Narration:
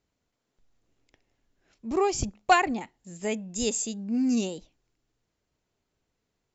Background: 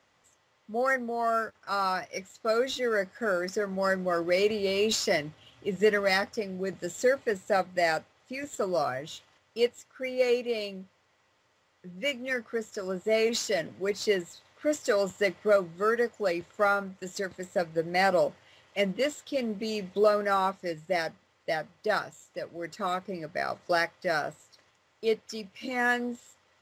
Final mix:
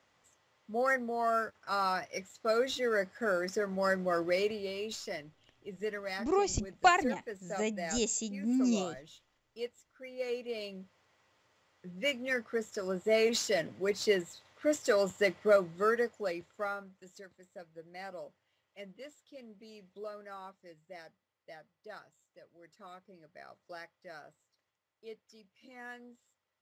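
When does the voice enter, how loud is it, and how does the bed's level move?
4.35 s, -4.0 dB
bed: 4.23 s -3 dB
4.89 s -13.5 dB
10.09 s -13.5 dB
11.00 s -2 dB
15.83 s -2 dB
17.44 s -20.5 dB

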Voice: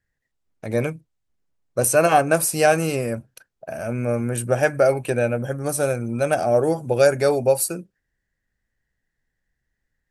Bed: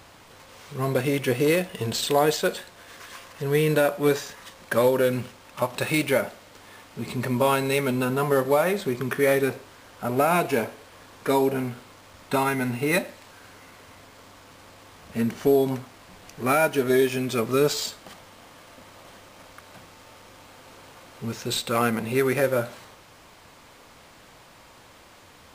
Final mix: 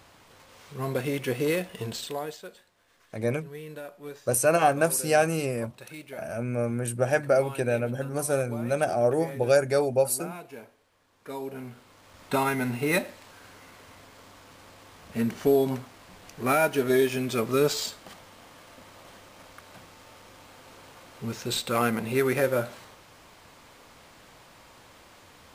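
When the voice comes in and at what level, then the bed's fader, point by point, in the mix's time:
2.50 s, -5.0 dB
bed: 1.83 s -5 dB
2.48 s -19.5 dB
11.04 s -19.5 dB
12.25 s -2 dB

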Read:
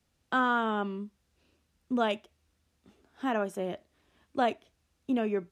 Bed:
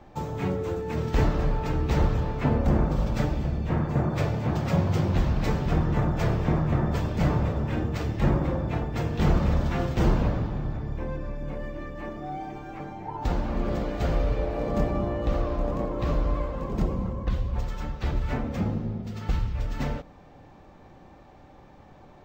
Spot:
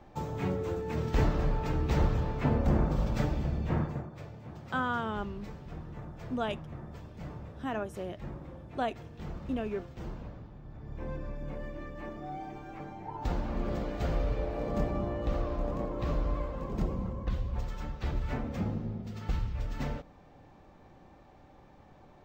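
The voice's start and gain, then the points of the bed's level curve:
4.40 s, -5.0 dB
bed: 3.82 s -4 dB
4.10 s -19 dB
10.62 s -19 dB
11.08 s -5.5 dB

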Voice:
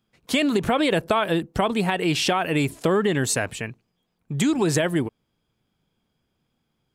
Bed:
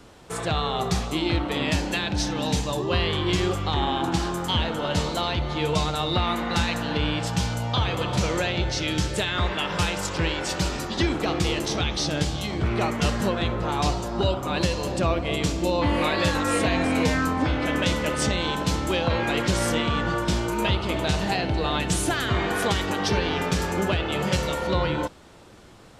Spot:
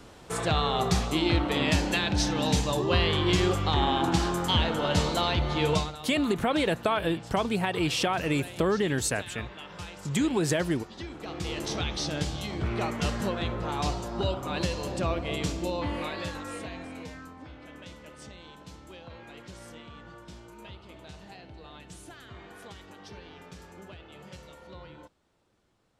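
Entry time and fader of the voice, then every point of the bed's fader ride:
5.75 s, -5.0 dB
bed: 5.74 s -0.5 dB
5.99 s -16.5 dB
11.11 s -16.5 dB
11.67 s -5.5 dB
15.50 s -5.5 dB
17.37 s -22.5 dB

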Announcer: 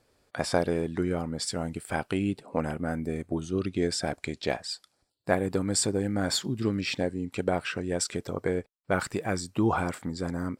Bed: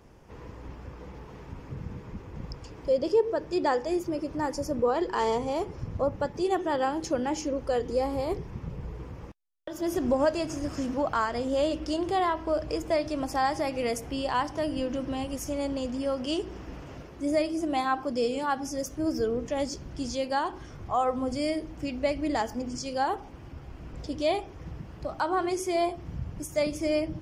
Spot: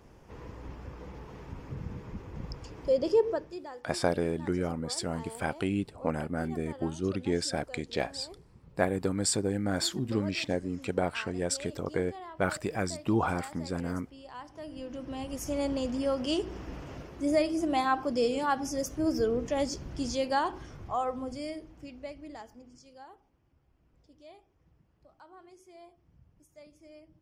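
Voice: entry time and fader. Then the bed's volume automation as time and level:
3.50 s, -2.0 dB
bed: 3.32 s -1 dB
3.67 s -18.5 dB
14.27 s -18.5 dB
15.57 s 0 dB
20.45 s 0 dB
23.40 s -26 dB

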